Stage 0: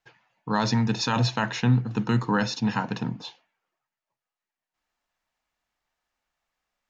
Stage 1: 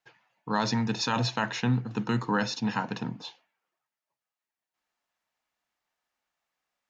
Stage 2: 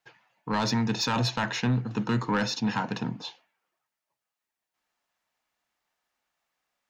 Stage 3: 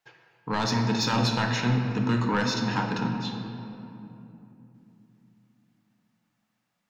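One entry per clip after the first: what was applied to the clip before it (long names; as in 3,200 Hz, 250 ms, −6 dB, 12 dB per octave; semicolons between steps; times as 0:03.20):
high-pass filter 160 Hz 6 dB per octave; level −2 dB
soft clipping −21 dBFS, distortion −14 dB; level +3 dB
rectangular room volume 140 cubic metres, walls hard, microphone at 0.31 metres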